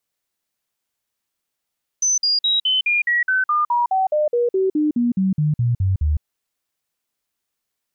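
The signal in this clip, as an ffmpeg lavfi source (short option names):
-f lavfi -i "aevalsrc='0.178*clip(min(mod(t,0.21),0.16-mod(t,0.21))/0.005,0,1)*sin(2*PI*6090*pow(2,-floor(t/0.21)/3)*mod(t,0.21))':d=4.2:s=44100"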